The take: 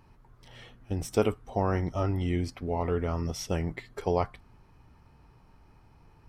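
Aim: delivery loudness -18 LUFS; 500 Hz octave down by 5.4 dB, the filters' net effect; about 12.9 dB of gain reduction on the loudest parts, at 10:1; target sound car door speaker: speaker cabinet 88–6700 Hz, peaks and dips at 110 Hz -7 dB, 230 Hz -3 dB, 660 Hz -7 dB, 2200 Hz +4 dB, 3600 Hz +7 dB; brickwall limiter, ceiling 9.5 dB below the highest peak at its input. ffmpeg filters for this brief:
-af "equalizer=f=500:t=o:g=-5,acompressor=threshold=-35dB:ratio=10,alimiter=level_in=9.5dB:limit=-24dB:level=0:latency=1,volume=-9.5dB,highpass=88,equalizer=f=110:t=q:w=4:g=-7,equalizer=f=230:t=q:w=4:g=-3,equalizer=f=660:t=q:w=4:g=-7,equalizer=f=2.2k:t=q:w=4:g=4,equalizer=f=3.6k:t=q:w=4:g=7,lowpass=f=6.7k:w=0.5412,lowpass=f=6.7k:w=1.3066,volume=28.5dB"

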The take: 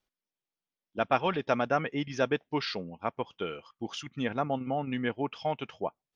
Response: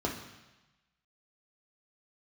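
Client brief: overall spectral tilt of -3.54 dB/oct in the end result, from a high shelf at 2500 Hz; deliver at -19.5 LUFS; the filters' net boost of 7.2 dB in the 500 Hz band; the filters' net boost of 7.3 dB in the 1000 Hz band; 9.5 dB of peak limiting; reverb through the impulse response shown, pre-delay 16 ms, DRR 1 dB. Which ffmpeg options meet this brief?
-filter_complex "[0:a]equalizer=f=500:t=o:g=6.5,equalizer=f=1k:t=o:g=8.5,highshelf=f=2.5k:g=-6,alimiter=limit=-14dB:level=0:latency=1,asplit=2[a][b];[1:a]atrim=start_sample=2205,adelay=16[c];[b][c]afir=irnorm=-1:irlink=0,volume=-8dB[d];[a][d]amix=inputs=2:normalize=0,volume=3.5dB"

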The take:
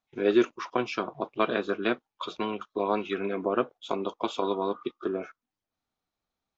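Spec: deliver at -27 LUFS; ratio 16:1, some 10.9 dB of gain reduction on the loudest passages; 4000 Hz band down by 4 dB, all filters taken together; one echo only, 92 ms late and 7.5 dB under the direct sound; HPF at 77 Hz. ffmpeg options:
-af "highpass=77,equalizer=f=4k:t=o:g=-5,acompressor=threshold=-27dB:ratio=16,aecho=1:1:92:0.422,volume=7dB"

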